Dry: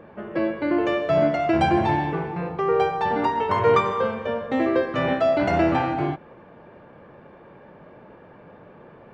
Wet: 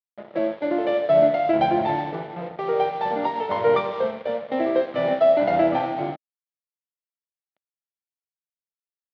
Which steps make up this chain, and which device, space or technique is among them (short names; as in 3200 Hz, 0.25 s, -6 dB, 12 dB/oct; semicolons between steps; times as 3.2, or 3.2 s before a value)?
blown loudspeaker (crossover distortion -35.5 dBFS; speaker cabinet 220–3600 Hz, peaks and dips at 270 Hz -4 dB, 400 Hz -6 dB, 610 Hz +5 dB, 1100 Hz -9 dB, 1600 Hz -8 dB, 2600 Hz -8 dB); gain +2.5 dB